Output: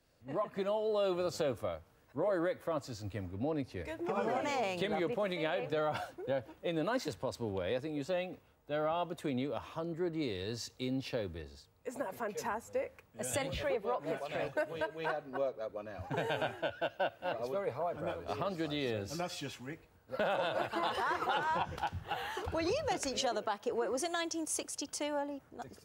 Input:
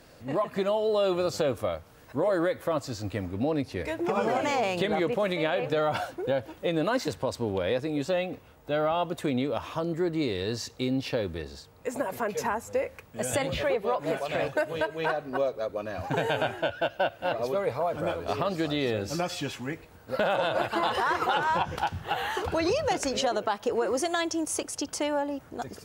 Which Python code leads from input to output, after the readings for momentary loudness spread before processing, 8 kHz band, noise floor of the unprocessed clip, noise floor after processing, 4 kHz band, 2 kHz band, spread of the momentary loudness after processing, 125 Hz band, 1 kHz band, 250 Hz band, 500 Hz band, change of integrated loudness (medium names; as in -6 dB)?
7 LU, -5.5 dB, -53 dBFS, -65 dBFS, -7.5 dB, -8.0 dB, 8 LU, -8.0 dB, -7.5 dB, -8.0 dB, -7.5 dB, -7.5 dB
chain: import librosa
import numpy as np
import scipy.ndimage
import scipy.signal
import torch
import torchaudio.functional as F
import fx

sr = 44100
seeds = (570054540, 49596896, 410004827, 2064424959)

y = fx.band_widen(x, sr, depth_pct=40)
y = y * librosa.db_to_amplitude(-7.5)